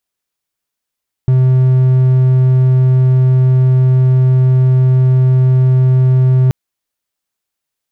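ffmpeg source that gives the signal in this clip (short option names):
-f lavfi -i "aevalsrc='0.596*(1-4*abs(mod(129*t+0.25,1)-0.5))':d=5.23:s=44100"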